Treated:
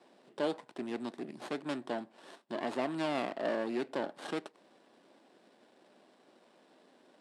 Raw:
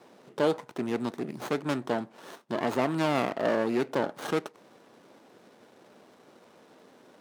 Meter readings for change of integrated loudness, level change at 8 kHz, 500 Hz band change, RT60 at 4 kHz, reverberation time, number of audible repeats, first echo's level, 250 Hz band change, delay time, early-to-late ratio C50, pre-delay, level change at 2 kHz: −7.5 dB, −9.0 dB, −7.5 dB, no reverb audible, no reverb audible, no echo audible, no echo audible, −7.0 dB, no echo audible, no reverb audible, no reverb audible, −7.0 dB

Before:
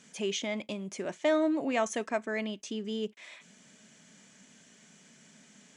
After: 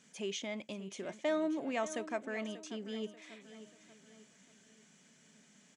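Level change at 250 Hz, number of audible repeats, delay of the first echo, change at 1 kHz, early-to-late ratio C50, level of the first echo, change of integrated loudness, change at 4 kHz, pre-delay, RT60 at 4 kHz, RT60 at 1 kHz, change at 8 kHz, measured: −6.0 dB, 3, 587 ms, −6.5 dB, no reverb audible, −14.0 dB, −6.5 dB, −6.5 dB, no reverb audible, no reverb audible, no reverb audible, −6.5 dB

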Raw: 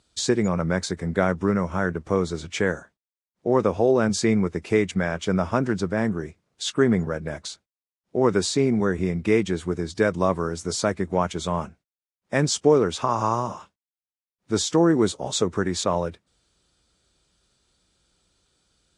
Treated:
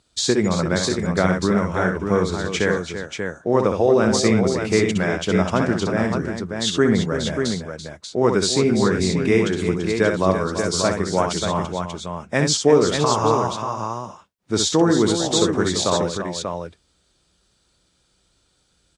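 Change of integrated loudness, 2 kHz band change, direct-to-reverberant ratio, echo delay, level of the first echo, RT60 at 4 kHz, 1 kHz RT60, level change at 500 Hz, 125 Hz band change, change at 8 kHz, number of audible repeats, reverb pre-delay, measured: +3.5 dB, +5.0 dB, no reverb audible, 64 ms, −6.0 dB, no reverb audible, no reverb audible, +4.0 dB, +3.5 dB, +6.0 dB, 3, no reverb audible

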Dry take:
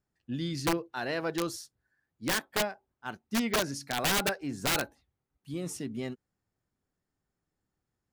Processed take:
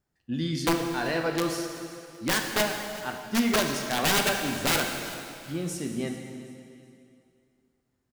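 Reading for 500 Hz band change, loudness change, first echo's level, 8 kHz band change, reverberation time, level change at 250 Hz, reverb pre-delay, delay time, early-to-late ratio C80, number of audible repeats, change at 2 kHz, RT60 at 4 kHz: +4.5 dB, +4.5 dB, −18.5 dB, +4.5 dB, 2.4 s, +5.5 dB, 5 ms, 381 ms, 5.5 dB, 2, +5.0 dB, 2.3 s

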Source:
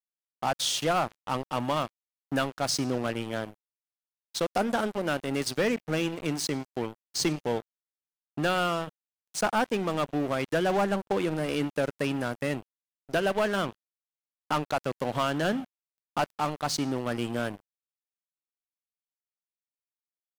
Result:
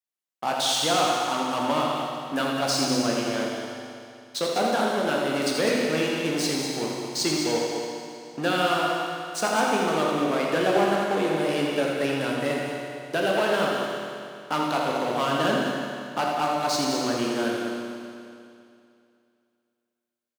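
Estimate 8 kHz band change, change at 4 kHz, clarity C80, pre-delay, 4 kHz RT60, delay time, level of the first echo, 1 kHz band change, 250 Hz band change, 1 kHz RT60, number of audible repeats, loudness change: +5.0 dB, +6.5 dB, −1.0 dB, 16 ms, 2.5 s, 82 ms, −6.0 dB, +5.5 dB, +4.0 dB, 2.5 s, 2, +4.5 dB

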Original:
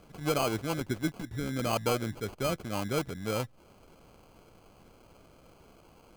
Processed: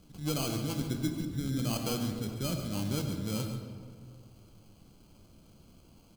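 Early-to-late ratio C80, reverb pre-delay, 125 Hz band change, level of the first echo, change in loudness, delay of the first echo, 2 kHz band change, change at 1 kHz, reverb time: 5.5 dB, 9 ms, +2.5 dB, −10.5 dB, −1.5 dB, 137 ms, −7.5 dB, −9.0 dB, 2.0 s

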